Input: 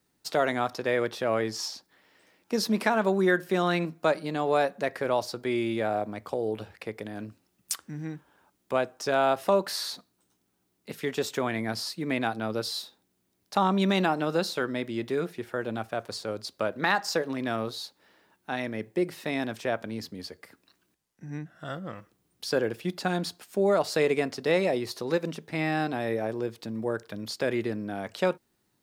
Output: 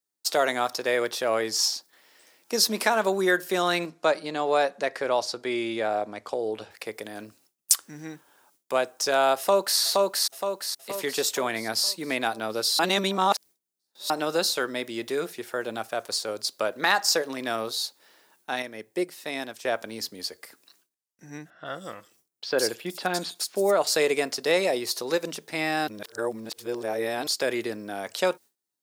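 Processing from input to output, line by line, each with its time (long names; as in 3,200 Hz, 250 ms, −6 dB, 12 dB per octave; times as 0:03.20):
0:03.86–0:06.71: high-frequency loss of the air 62 metres
0:09.38–0:09.80: delay throw 470 ms, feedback 50%, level −1.5 dB
0:12.79–0:14.10: reverse
0:18.62–0:19.65: expander for the loud parts, over −39 dBFS
0:21.50–0:23.87: multiband delay without the direct sound lows, highs 160 ms, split 4,100 Hz
0:25.88–0:27.27: reverse
whole clip: noise gate with hold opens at −55 dBFS; bass and treble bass −13 dB, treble +10 dB; level +2.5 dB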